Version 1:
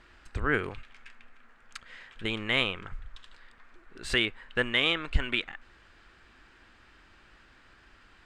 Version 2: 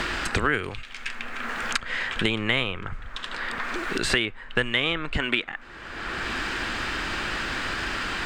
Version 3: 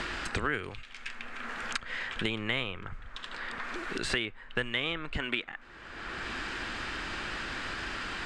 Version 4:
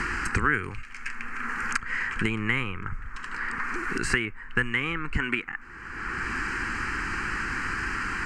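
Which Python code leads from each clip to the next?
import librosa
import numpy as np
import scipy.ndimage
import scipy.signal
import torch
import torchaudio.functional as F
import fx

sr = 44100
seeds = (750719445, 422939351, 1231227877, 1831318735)

y1 = fx.band_squash(x, sr, depth_pct=100)
y1 = F.gain(torch.from_numpy(y1), 7.0).numpy()
y2 = scipy.signal.sosfilt(scipy.signal.butter(2, 10000.0, 'lowpass', fs=sr, output='sos'), y1)
y2 = F.gain(torch.from_numpy(y2), -7.5).numpy()
y3 = fx.fixed_phaser(y2, sr, hz=1500.0, stages=4)
y3 = F.gain(torch.from_numpy(y3), 8.5).numpy()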